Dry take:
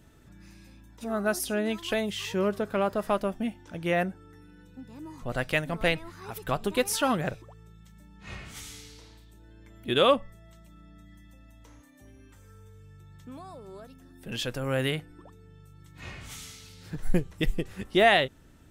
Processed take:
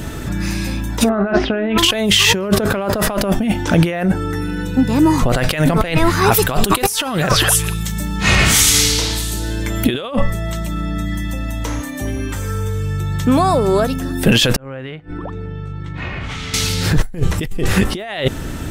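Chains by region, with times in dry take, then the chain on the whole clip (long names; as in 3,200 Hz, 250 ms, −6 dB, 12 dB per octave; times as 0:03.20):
0:01.09–0:01.78: inverse Chebyshev low-pass filter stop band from 12,000 Hz, stop band 80 dB + noise gate with hold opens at −33 dBFS, closes at −39 dBFS + double-tracking delay 41 ms −12 dB
0:06.32–0:09.87: high-shelf EQ 3,700 Hz +7.5 dB + echo through a band-pass that steps 204 ms, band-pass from 1,400 Hz, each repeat 1.4 octaves, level −11.5 dB
0:14.56–0:16.54: low-pass filter 2,700 Hz + gate with flip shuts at −28 dBFS, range −30 dB + downward compressor, threshold −53 dBFS
whole clip: compressor whose output falls as the input rises −38 dBFS, ratio −1; boost into a limiter +23.5 dB; level −1 dB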